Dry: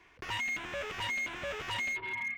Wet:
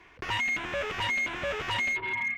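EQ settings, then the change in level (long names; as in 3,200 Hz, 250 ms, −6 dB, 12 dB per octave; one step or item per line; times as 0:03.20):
high-shelf EQ 5,600 Hz −7.5 dB
+6.5 dB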